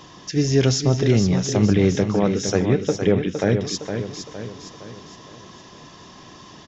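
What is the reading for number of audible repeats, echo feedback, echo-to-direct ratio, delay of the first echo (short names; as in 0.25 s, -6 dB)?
5, 47%, -6.5 dB, 0.462 s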